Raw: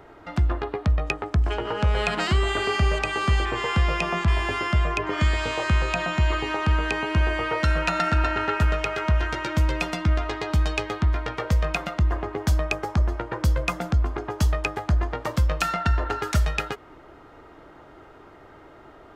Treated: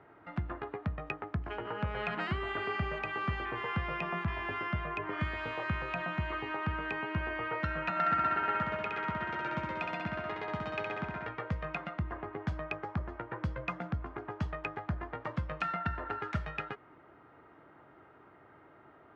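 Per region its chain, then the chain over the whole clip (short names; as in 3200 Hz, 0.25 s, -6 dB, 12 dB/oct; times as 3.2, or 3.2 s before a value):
7.9–11.27 HPF 170 Hz + flutter echo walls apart 11.3 m, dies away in 1.1 s
whole clip: Chebyshev band-pass 120–2000 Hz, order 2; bell 460 Hz -3 dB 1.8 oct; gain -7.5 dB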